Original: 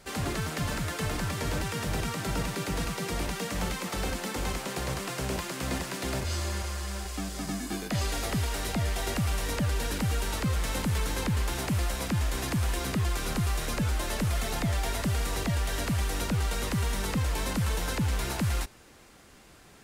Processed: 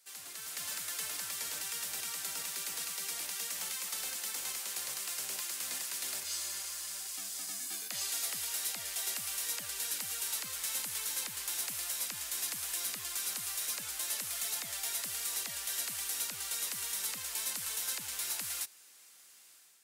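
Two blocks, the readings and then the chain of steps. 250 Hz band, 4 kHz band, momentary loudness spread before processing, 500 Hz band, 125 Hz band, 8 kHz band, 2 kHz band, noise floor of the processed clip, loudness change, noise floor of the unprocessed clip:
−27.0 dB, −2.0 dB, 3 LU, −20.0 dB, −33.0 dB, +3.5 dB, −8.0 dB, −58 dBFS, −4.5 dB, −54 dBFS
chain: first difference
automatic gain control gain up to 8.5 dB
level −5.5 dB

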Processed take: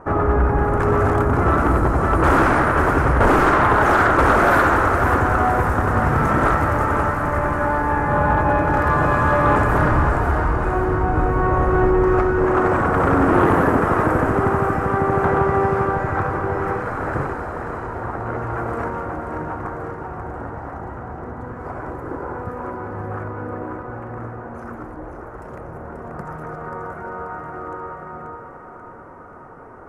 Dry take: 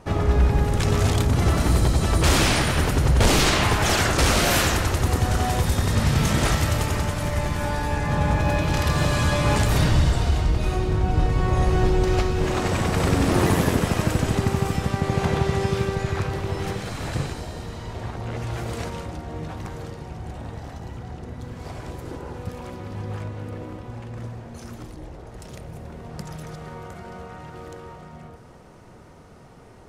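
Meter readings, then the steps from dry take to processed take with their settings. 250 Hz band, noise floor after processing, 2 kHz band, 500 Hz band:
+4.0 dB, −38 dBFS, +6.5 dB, +7.0 dB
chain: drawn EQ curve 200 Hz 0 dB, 280 Hz +7 dB, 660 Hz +7 dB, 1,400 Hz +13 dB, 3,600 Hz −20 dB, 11,000 Hz −7 dB
on a send: feedback echo with a high-pass in the loop 535 ms, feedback 50%, level −6 dB
on the sum: soft clipping −5.5 dBFS, distortion −23 dB
parametric band 12,000 Hz −5 dB 1.6 octaves

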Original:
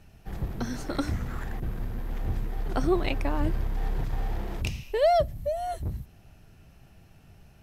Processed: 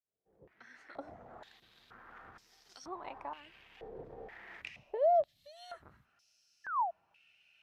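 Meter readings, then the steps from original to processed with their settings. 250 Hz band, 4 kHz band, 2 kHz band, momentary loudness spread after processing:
−24.0 dB, −14.5 dB, −9.5 dB, 24 LU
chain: fade in at the beginning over 2.47 s
noise reduction from a noise print of the clip's start 6 dB
sound drawn into the spectrogram fall, 0:06.64–0:06.91, 640–1,800 Hz −33 dBFS
downward compressor 6 to 1, threshold −29 dBFS, peak gain reduction 10.5 dB
band-pass on a step sequencer 2.1 Hz 480–5,400 Hz
level +5 dB

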